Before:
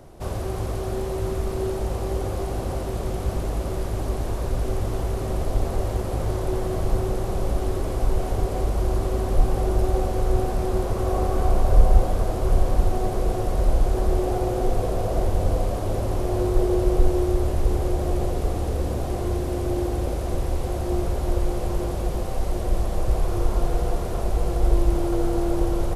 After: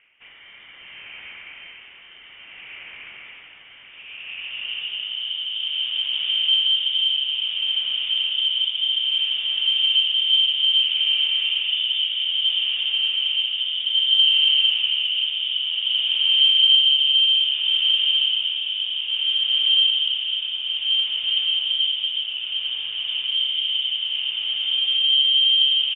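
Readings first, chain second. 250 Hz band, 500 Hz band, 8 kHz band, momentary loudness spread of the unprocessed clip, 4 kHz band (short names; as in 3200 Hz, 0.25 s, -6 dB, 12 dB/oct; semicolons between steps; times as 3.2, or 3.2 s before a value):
under -30 dB, under -30 dB, under -40 dB, 6 LU, +31.0 dB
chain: tilt -2.5 dB/oct; high-pass sweep 1300 Hz -> 380 Hz, 3.67–5.66; rotary speaker horn 0.6 Hz; frequency-shifting echo 0.164 s, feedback 56%, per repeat +140 Hz, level -16 dB; inverted band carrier 3500 Hz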